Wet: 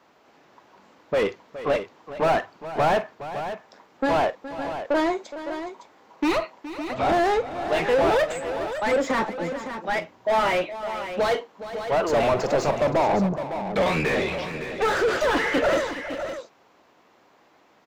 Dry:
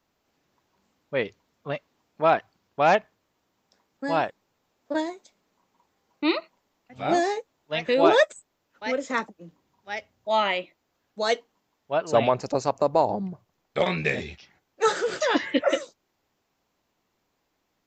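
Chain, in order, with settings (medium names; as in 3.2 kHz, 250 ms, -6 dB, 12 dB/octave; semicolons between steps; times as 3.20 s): overdrive pedal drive 36 dB, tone 1 kHz, clips at -5.5 dBFS; multi-tap echo 41/49/418/560 ms -18.5/-18/-13.5/-10 dB; trim -6.5 dB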